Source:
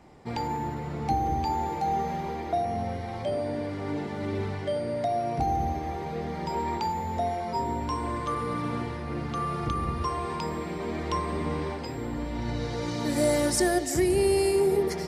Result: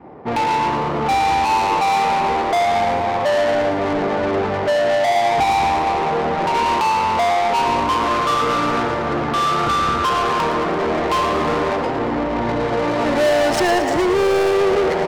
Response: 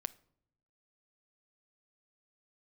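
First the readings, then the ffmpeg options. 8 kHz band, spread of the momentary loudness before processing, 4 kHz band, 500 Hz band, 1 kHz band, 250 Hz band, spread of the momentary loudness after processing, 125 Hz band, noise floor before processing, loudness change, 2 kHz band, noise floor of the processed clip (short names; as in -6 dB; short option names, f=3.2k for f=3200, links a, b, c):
+3.0 dB, 9 LU, +13.5 dB, +10.5 dB, +13.5 dB, +7.0 dB, 4 LU, +2.5 dB, -35 dBFS, +11.0 dB, +16.0 dB, -21 dBFS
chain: -filter_complex "[0:a]adynamicequalizer=threshold=0.00794:dfrequency=620:dqfactor=4.5:tfrequency=620:tqfactor=4.5:attack=5:release=100:ratio=0.375:range=2.5:mode=boostabove:tftype=bell,adynamicsmooth=sensitivity=4.5:basefreq=660,asplit=2[a][b];[b]highpass=f=720:p=1,volume=27dB,asoftclip=type=tanh:threshold=-13.5dB[c];[a][c]amix=inputs=2:normalize=0,lowpass=f=5.6k:p=1,volume=-6dB,asplit=9[d][e][f][g][h][i][j][k][l];[e]adelay=113,afreqshift=100,volume=-10dB[m];[f]adelay=226,afreqshift=200,volume=-13.9dB[n];[g]adelay=339,afreqshift=300,volume=-17.8dB[o];[h]adelay=452,afreqshift=400,volume=-21.6dB[p];[i]adelay=565,afreqshift=500,volume=-25.5dB[q];[j]adelay=678,afreqshift=600,volume=-29.4dB[r];[k]adelay=791,afreqshift=700,volume=-33.3dB[s];[l]adelay=904,afreqshift=800,volume=-37.1dB[t];[d][m][n][o][p][q][r][s][t]amix=inputs=9:normalize=0,volume=2dB"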